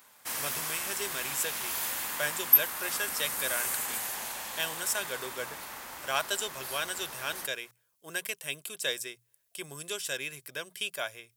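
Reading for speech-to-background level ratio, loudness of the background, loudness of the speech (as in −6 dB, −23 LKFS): −3.5 dB, −31.0 LKFS, −34.5 LKFS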